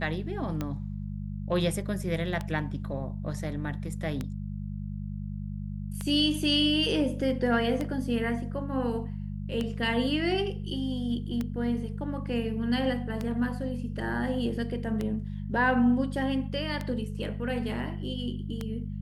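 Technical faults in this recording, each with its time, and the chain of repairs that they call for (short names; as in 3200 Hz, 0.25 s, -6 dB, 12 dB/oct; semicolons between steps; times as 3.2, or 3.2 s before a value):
hum 50 Hz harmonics 4 -35 dBFS
tick 33 1/3 rpm -18 dBFS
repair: de-click; de-hum 50 Hz, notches 4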